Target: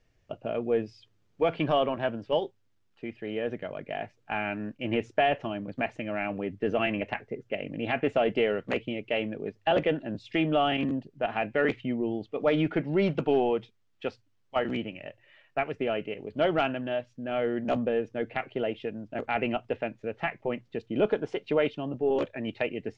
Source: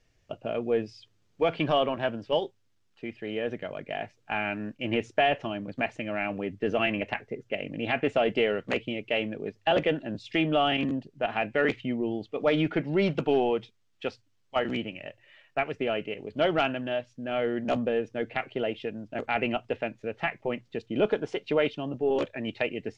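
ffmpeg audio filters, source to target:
ffmpeg -i in.wav -af "highshelf=frequency=3300:gain=-7.5" out.wav

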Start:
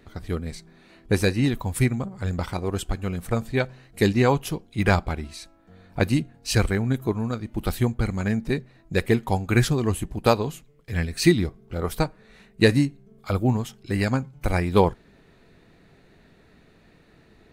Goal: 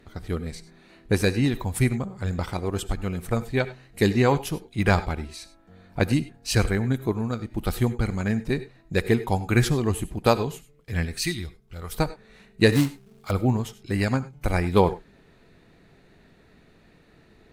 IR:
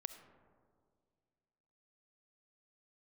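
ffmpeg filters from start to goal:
-filter_complex "[0:a]asettb=1/sr,asplit=3[link_01][link_02][link_03];[link_01]atrim=end=11.184[link_04];[link_02]atrim=start=11.18:end=11.94,asetpts=PTS-STARTPTS,afade=type=in:duration=0.004:curve=qsin,afade=type=out:start_time=0.756:duration=0.004:curve=qsin,equalizer=frequency=370:width=0.31:gain=-14[link_05];[link_03]atrim=start=11.936[link_06];[link_04][link_05]acrossfade=duration=0.004:curve1=hsin:curve2=qsin[link_07];[link_07][link_06]acrossfade=duration=0.004:curve1=qsin:curve2=hsin,asettb=1/sr,asplit=3[link_08][link_09][link_10];[link_08]atrim=end=12.724[link_11];[link_09]atrim=start=12.72:end=13.31,asetpts=PTS-STARTPTS,afade=type=in:duration=0.004:curve=qsin,afade=type=out:start_time=0.586:duration=0.004:curve=qsin,acrusher=bits=3:mode=log:mix=0:aa=0.000001[link_12];[link_10]atrim=start=13.306[link_13];[link_11][link_12]acrossfade=duration=0.004:curve1=hsin:curve2=qsin[link_14];[link_14][link_13]acrossfade=duration=0.004:curve1=qsin:curve2=hsin[link_15];[1:a]atrim=start_sample=2205,atrim=end_sample=3087,asetrate=29106,aresample=44100[link_16];[link_15][link_16]afir=irnorm=-1:irlink=0,volume=1.5dB"

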